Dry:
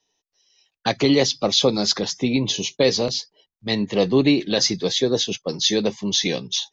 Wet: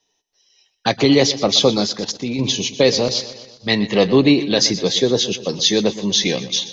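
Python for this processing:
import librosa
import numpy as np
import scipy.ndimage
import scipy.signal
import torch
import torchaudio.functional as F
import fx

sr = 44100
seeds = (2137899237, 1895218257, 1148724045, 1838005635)

y = fx.echo_feedback(x, sr, ms=122, feedback_pct=55, wet_db=-15)
y = fx.level_steps(y, sr, step_db=13, at=(1.84, 2.39))
y = fx.peak_eq(y, sr, hz=1800.0, db=5.5, octaves=1.6, at=(3.15, 4.2))
y = y * 10.0 ** (3.5 / 20.0)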